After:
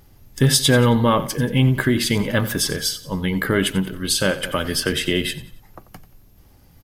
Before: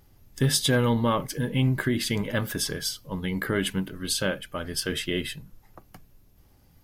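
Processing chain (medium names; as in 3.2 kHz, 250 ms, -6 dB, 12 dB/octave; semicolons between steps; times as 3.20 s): on a send: feedback delay 90 ms, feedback 39%, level -15.5 dB; 4.43–5.31 s: on the sum: three bands compressed up and down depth 70%; trim +7 dB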